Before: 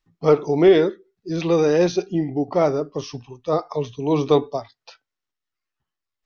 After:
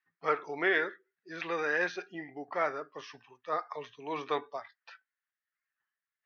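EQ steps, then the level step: band-pass 1700 Hz, Q 4.5; +6.5 dB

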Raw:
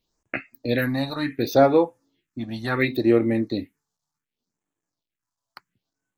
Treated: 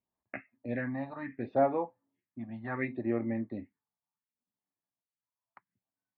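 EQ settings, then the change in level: air absorption 140 m; speaker cabinet 110–2000 Hz, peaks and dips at 150 Hz -9 dB, 320 Hz -9 dB, 460 Hz -9 dB, 1400 Hz -8 dB; -6.5 dB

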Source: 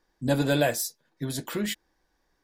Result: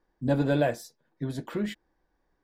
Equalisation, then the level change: LPF 1200 Hz 6 dB/oct; 0.0 dB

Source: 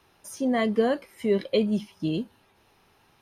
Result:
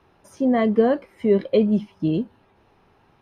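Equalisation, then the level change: LPF 1100 Hz 6 dB/oct; +6.0 dB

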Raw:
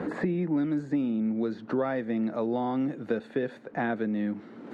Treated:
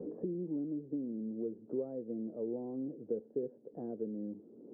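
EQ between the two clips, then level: ladder low-pass 510 Hz, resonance 55%; -4.0 dB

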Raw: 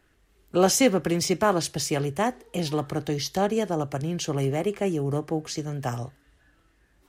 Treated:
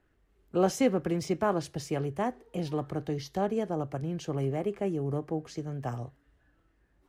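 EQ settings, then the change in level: high shelf 2200 Hz -11.5 dB; -4.5 dB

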